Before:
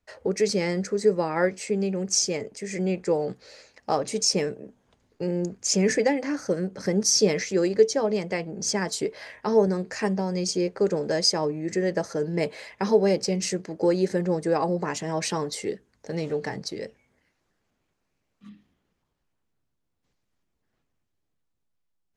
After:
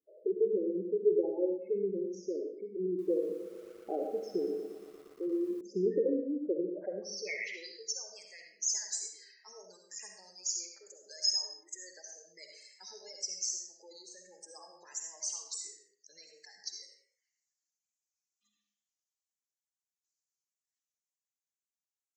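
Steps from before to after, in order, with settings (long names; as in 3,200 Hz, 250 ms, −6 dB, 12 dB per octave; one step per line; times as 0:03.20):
band-pass filter sweep 350 Hz → 6,900 Hz, 0:06.56–0:07.84
gate on every frequency bin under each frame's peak −10 dB strong
low-shelf EQ 250 Hz −10 dB
mains-hum notches 50/100/150 Hz
tape wow and flutter 58 cents
parametric band 1,400 Hz −5.5 dB 0.21 octaves
convolution reverb, pre-delay 25 ms, DRR 2.5 dB
0:02.87–0:05.61: feedback echo at a low word length 117 ms, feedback 80%, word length 9 bits, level −13.5 dB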